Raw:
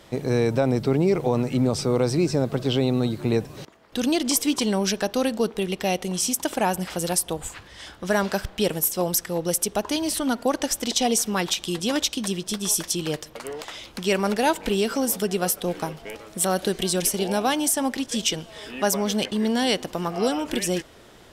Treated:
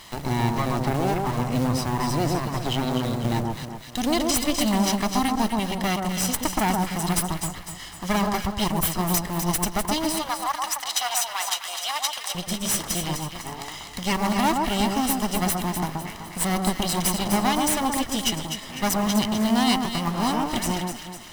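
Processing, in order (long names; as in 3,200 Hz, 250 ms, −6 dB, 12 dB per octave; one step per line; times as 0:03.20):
lower of the sound and its delayed copy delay 1 ms
0:10.16–0:12.35: high-pass filter 730 Hz 24 dB per octave
floating-point word with a short mantissa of 2 bits
delay that swaps between a low-pass and a high-pass 126 ms, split 1,400 Hz, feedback 58%, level −2.5 dB
one half of a high-frequency compander encoder only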